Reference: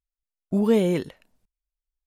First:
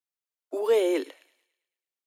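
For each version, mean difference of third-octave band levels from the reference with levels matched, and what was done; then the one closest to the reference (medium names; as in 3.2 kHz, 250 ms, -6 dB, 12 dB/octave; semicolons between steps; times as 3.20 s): 7.0 dB: steep high-pass 280 Hz 96 dB/octave; on a send: feedback echo behind a high-pass 109 ms, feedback 50%, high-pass 1.8 kHz, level -17 dB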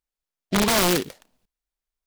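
13.5 dB: bass shelf 200 Hz -9.5 dB; integer overflow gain 19.5 dB; delay time shaken by noise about 2.8 kHz, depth 0.12 ms; trim +5.5 dB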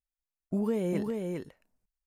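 3.0 dB: peaking EQ 3.5 kHz -8.5 dB 0.65 oct; compression, threshold -20 dBFS, peak gain reduction 6.5 dB; delay 402 ms -4 dB; trim -5.5 dB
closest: third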